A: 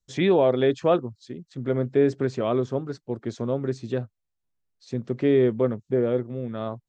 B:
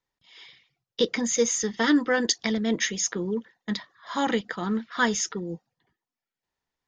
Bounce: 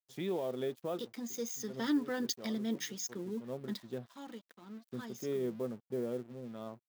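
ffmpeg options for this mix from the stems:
ffmpeg -i stem1.wav -i stem2.wav -filter_complex "[0:a]equalizer=frequency=280:width_type=o:width=0.22:gain=-10,alimiter=limit=-14.5dB:level=0:latency=1:release=150,volume=-13.5dB[link_01];[1:a]asoftclip=type=tanh:threshold=-12.5dB,volume=-12.5dB,afade=type=in:start_time=1.09:duration=0.78:silence=0.473151,afade=type=out:start_time=3.82:duration=0.35:silence=0.298538,asplit=2[link_02][link_03];[link_03]apad=whole_len=303750[link_04];[link_01][link_04]sidechaincompress=threshold=-50dB:ratio=16:attack=31:release=167[link_05];[link_05][link_02]amix=inputs=2:normalize=0,equalizer=frequency=125:width_type=o:width=1:gain=4,equalizer=frequency=250:width_type=o:width=1:gain=9,equalizer=frequency=2000:width_type=o:width=1:gain=-5,equalizer=frequency=8000:width_type=o:width=1:gain=-9,aeval=exprs='sgn(val(0))*max(abs(val(0))-0.00126,0)':channel_layout=same,aemphasis=mode=production:type=bsi" out.wav

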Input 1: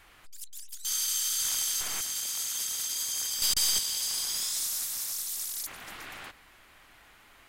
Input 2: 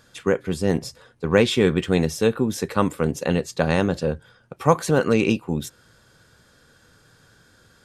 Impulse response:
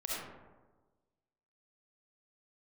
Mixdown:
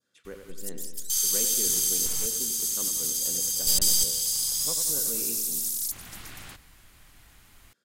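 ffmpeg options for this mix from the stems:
-filter_complex "[0:a]bass=frequency=250:gain=15,treble=frequency=4000:gain=11,adelay=250,volume=-4.5dB[link_01];[1:a]highpass=210,equalizer=frequency=830:width=1.8:gain=-7.5,volume=-20dB,asplit=2[link_02][link_03];[link_03]volume=-7.5dB,aecho=0:1:92|184|276|368|460|552|644|736|828:1|0.59|0.348|0.205|0.121|0.0715|0.0422|0.0249|0.0147[link_04];[link_01][link_02][link_04]amix=inputs=3:normalize=0,adynamicequalizer=threshold=0.00708:dfrequency=1900:dqfactor=0.77:tfrequency=1900:tqfactor=0.77:attack=5:release=100:ratio=0.375:range=2.5:mode=cutabove:tftype=bell"

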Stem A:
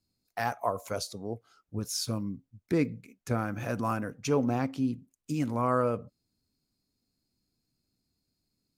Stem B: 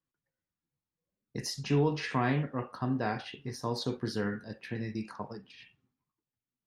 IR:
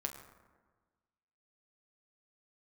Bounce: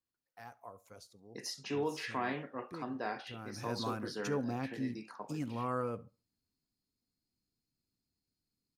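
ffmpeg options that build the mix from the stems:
-filter_complex "[0:a]bandreject=frequency=610:width=12,volume=-8.5dB,afade=type=in:start_time=3.33:duration=0.34:silence=0.266073,asplit=2[link_01][link_02];[link_02]volume=-23.5dB[link_03];[1:a]highpass=310,volume=-4.5dB[link_04];[link_03]aecho=0:1:70|140|210|280:1|0.24|0.0576|0.0138[link_05];[link_01][link_04][link_05]amix=inputs=3:normalize=0"

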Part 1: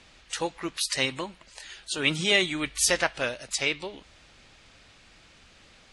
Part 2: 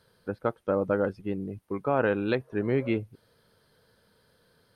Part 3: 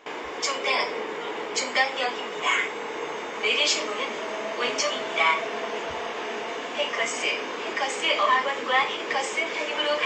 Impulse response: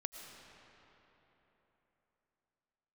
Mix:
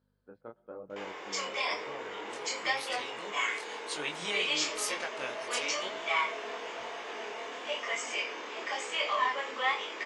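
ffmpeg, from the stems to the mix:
-filter_complex "[0:a]acompressor=threshold=-32dB:ratio=2.5,adelay=2000,volume=-0.5dB[link_01];[1:a]highshelf=frequency=2000:gain=-11.5,aeval=exprs='val(0)+0.00355*(sin(2*PI*50*n/s)+sin(2*PI*2*50*n/s)/2+sin(2*PI*3*50*n/s)/3+sin(2*PI*4*50*n/s)/4+sin(2*PI*5*50*n/s)/5)':channel_layout=same,volume=-13dB,afade=type=out:start_time=1.75:duration=0.68:silence=0.334965,asplit=3[link_02][link_03][link_04];[link_03]volume=-14.5dB[link_05];[2:a]adelay=900,volume=-4.5dB[link_06];[link_04]apad=whole_len=349340[link_07];[link_01][link_07]sidechaincompress=threshold=-49dB:ratio=8:attack=16:release=1070[link_08];[3:a]atrim=start_sample=2205[link_09];[link_05][link_09]afir=irnorm=-1:irlink=0[link_10];[link_08][link_02][link_06][link_10]amix=inputs=4:normalize=0,highpass=frequency=400:poles=1,flanger=delay=20:depth=6.3:speed=1"

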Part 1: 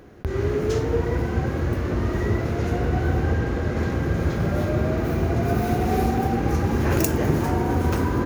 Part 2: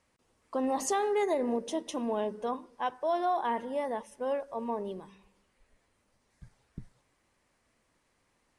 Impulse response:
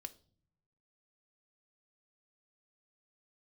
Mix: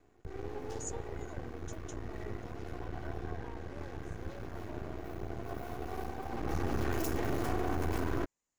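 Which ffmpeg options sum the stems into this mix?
-filter_complex "[0:a]aecho=1:1:2.7:0.61,aeval=exprs='max(val(0),0)':channel_layout=same,volume=-3.5dB,afade=type=in:start_time=6.26:duration=0.64:silence=0.223872[link_01];[1:a]alimiter=level_in=1.5dB:limit=-24dB:level=0:latency=1,volume=-1.5dB,lowpass=frequency=7000:width_type=q:width=9.9,volume=-19.5dB[link_02];[link_01][link_02]amix=inputs=2:normalize=0,alimiter=limit=-22.5dB:level=0:latency=1:release=18"

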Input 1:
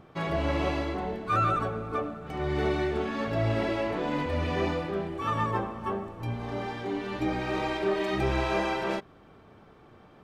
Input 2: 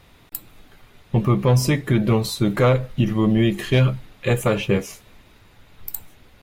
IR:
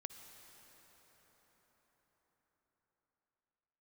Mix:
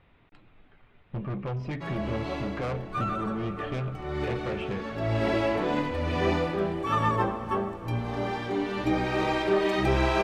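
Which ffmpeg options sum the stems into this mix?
-filter_complex "[0:a]adelay=1650,volume=1dB,asplit=2[link_01][link_02];[link_02]volume=-5.5dB[link_03];[1:a]lowpass=frequency=2900:width=0.5412,lowpass=frequency=2900:width=1.3066,asoftclip=type=tanh:threshold=-19.5dB,volume=-9dB,asplit=2[link_04][link_05];[link_05]apad=whole_len=524105[link_06];[link_01][link_06]sidechaincompress=threshold=-49dB:ratio=8:attack=8.6:release=400[link_07];[2:a]atrim=start_sample=2205[link_08];[link_03][link_08]afir=irnorm=-1:irlink=0[link_09];[link_07][link_04][link_09]amix=inputs=3:normalize=0"

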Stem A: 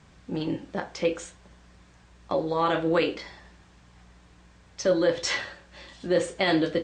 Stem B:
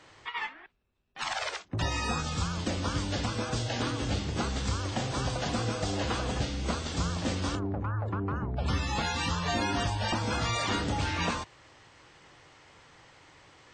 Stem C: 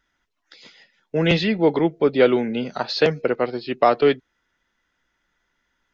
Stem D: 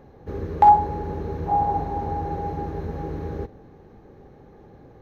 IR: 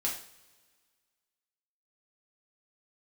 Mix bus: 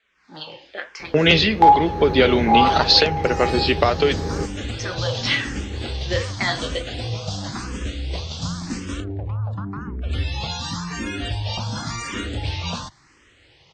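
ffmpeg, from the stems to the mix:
-filter_complex "[0:a]acrossover=split=470 4800:gain=0.141 1 0.0891[link_01][link_02][link_03];[link_01][link_02][link_03]amix=inputs=3:normalize=0,asplit=2[link_04][link_05];[link_05]afreqshift=-1.3[link_06];[link_04][link_06]amix=inputs=2:normalize=1,volume=-5.5dB[link_07];[1:a]lowshelf=frequency=360:gain=10.5,asplit=2[link_08][link_09];[link_09]afreqshift=0.92[link_10];[link_08][link_10]amix=inputs=2:normalize=1,adelay=1450,volume=-15.5dB[link_11];[2:a]agate=range=-28dB:threshold=-40dB:ratio=16:detection=peak,volume=0.5dB[link_12];[3:a]adelay=1000,volume=-7dB[link_13];[link_07][link_12]amix=inputs=2:normalize=0,flanger=delay=4.4:depth=9.9:regen=67:speed=1:shape=sinusoidal,acompressor=threshold=-25dB:ratio=6,volume=0dB[link_14];[link_11][link_13][link_14]amix=inputs=3:normalize=0,equalizer=frequency=4200:width=0.5:gain=10,dynaudnorm=framelen=150:gausssize=3:maxgain=13dB"

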